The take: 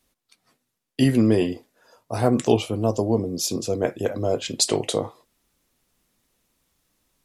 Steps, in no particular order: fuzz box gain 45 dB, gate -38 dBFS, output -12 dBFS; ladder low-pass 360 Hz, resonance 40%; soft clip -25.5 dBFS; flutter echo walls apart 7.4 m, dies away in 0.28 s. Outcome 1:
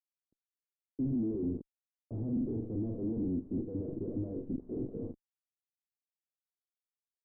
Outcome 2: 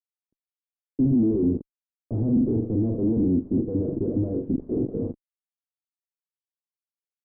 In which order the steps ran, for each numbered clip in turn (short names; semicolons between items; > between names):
flutter echo > fuzz box > soft clip > ladder low-pass; flutter echo > soft clip > fuzz box > ladder low-pass